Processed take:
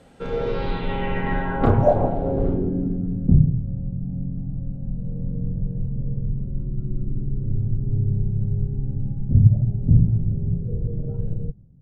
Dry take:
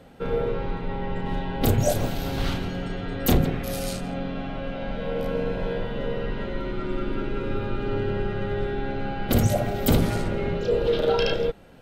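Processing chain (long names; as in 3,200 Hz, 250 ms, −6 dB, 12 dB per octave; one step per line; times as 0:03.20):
automatic gain control gain up to 6 dB
low-pass filter sweep 8,800 Hz → 130 Hz, 0:00.12–0:03.46
level −2 dB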